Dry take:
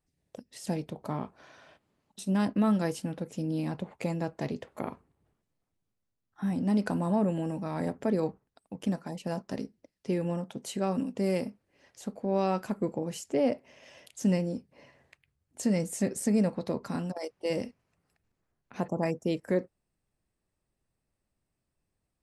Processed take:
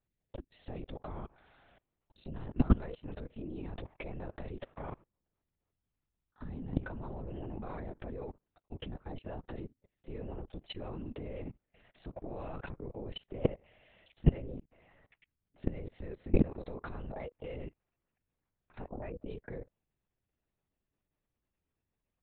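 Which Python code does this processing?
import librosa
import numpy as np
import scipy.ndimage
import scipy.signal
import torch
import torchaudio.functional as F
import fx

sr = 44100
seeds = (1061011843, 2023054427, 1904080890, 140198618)

y = fx.lpc_vocoder(x, sr, seeds[0], excitation='whisper', order=10)
y = fx.level_steps(y, sr, step_db=23)
y = y * 10.0 ** (5.0 / 20.0)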